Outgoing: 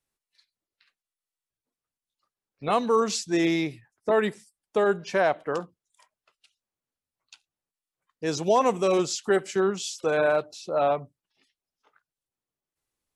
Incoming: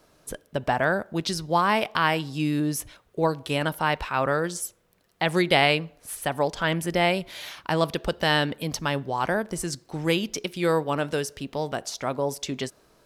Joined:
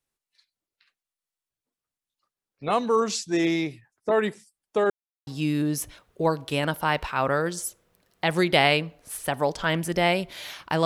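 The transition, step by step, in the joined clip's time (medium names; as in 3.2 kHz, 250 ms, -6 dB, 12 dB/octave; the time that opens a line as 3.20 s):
outgoing
4.90–5.27 s: mute
5.27 s: go over to incoming from 2.25 s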